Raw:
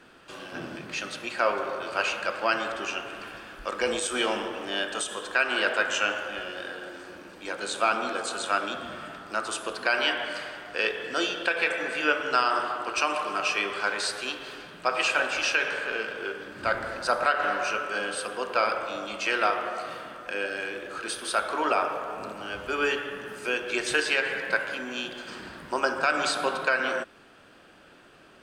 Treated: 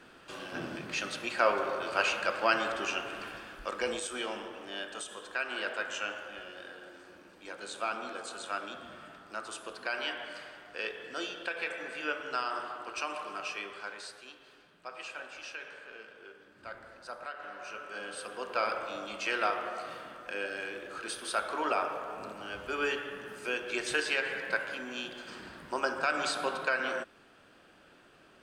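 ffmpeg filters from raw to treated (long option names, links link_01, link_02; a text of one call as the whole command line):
ffmpeg -i in.wav -af "volume=11dB,afade=type=out:start_time=3.22:duration=0.99:silence=0.375837,afade=type=out:start_time=13.28:duration=0.97:silence=0.398107,afade=type=in:start_time=17.52:duration=1.22:silence=0.237137" out.wav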